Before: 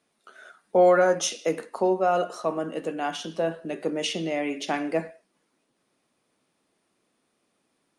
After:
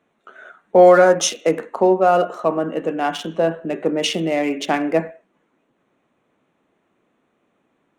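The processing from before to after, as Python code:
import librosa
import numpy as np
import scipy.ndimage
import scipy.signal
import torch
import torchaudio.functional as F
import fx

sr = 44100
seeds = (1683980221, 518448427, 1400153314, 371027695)

y = fx.wiener(x, sr, points=9)
y = F.gain(torch.from_numpy(y), 8.0).numpy()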